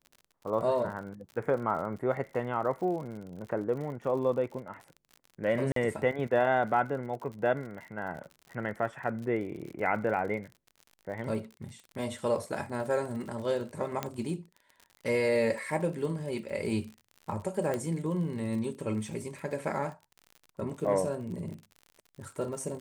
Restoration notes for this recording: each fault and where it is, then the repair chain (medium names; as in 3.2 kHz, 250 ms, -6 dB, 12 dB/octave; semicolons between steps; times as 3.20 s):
crackle 58 per s -40 dBFS
5.72–5.76 s: dropout 43 ms
14.03 s: pop -16 dBFS
17.74 s: pop -19 dBFS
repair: de-click; interpolate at 5.72 s, 43 ms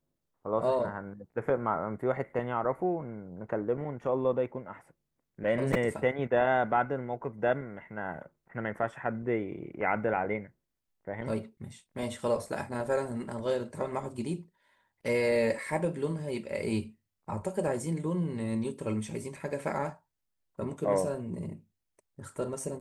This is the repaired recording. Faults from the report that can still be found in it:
nothing left